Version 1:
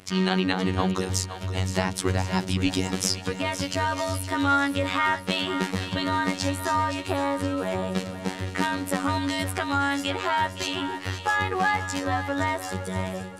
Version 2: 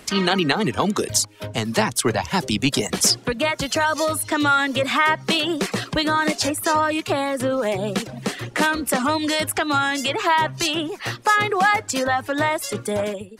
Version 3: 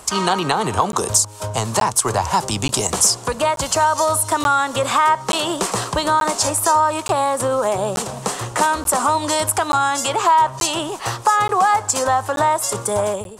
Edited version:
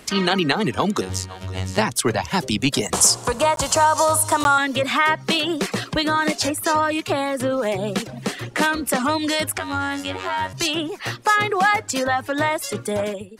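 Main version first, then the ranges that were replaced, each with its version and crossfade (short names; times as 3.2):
2
1.01–1.78 from 1
2.93–4.58 from 3
9.58–10.53 from 1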